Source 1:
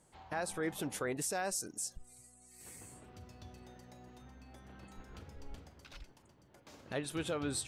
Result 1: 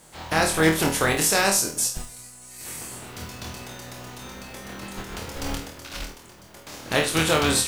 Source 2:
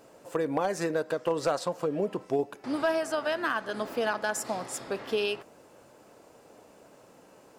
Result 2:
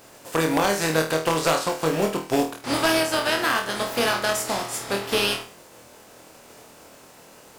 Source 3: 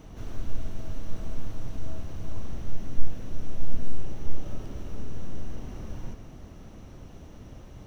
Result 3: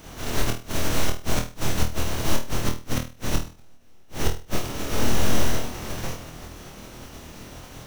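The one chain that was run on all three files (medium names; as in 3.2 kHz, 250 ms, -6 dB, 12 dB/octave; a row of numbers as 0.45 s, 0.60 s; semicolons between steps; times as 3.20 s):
spectral contrast reduction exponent 0.59; inverted gate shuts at -11 dBFS, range -41 dB; flutter echo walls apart 4.3 m, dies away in 0.34 s; peak normalisation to -6 dBFS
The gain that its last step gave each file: +14.5 dB, +5.0 dB, +1.0 dB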